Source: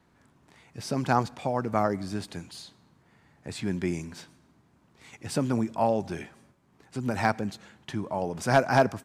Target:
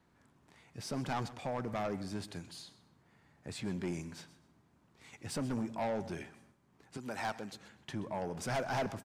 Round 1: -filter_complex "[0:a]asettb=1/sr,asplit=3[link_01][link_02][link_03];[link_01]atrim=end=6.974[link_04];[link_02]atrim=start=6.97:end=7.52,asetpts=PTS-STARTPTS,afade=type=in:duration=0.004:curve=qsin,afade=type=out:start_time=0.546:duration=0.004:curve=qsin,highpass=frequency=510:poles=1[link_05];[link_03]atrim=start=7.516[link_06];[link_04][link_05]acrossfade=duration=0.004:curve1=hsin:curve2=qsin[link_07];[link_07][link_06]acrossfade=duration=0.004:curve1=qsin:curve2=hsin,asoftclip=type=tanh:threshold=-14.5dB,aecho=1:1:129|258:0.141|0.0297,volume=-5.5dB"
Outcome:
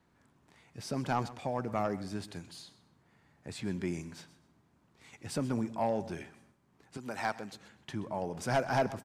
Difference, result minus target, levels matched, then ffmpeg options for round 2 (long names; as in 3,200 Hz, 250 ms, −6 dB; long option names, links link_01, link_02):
soft clipping: distortion −8 dB
-filter_complex "[0:a]asettb=1/sr,asplit=3[link_01][link_02][link_03];[link_01]atrim=end=6.974[link_04];[link_02]atrim=start=6.97:end=7.52,asetpts=PTS-STARTPTS,afade=type=in:duration=0.004:curve=qsin,afade=type=out:start_time=0.546:duration=0.004:curve=qsin,highpass=frequency=510:poles=1[link_05];[link_03]atrim=start=7.516[link_06];[link_04][link_05]acrossfade=duration=0.004:curve1=hsin:curve2=qsin[link_07];[link_07][link_06]acrossfade=duration=0.004:curve1=qsin:curve2=hsin,asoftclip=type=tanh:threshold=-24.5dB,aecho=1:1:129|258:0.141|0.0297,volume=-5.5dB"